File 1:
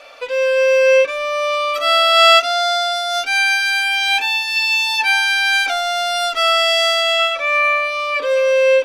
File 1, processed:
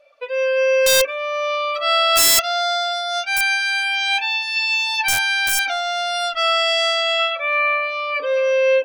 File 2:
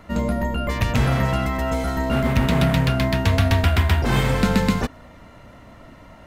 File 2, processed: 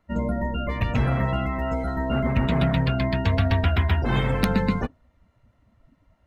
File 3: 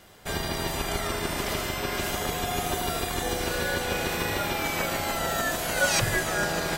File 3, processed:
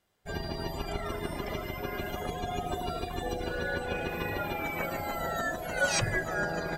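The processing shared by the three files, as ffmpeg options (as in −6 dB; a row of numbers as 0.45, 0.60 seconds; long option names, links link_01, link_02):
-af "afftdn=noise_reduction=20:noise_floor=-29,aeval=exprs='(mod(2.11*val(0)+1,2)-1)/2.11':channel_layout=same,volume=-3dB"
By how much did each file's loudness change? −3.0, −3.5, −5.5 LU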